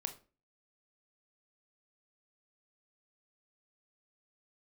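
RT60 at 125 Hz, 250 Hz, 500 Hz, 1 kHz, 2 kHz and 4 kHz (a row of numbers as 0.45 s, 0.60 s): 0.40 s, 0.45 s, 0.40 s, 0.30 s, 0.30 s, 0.25 s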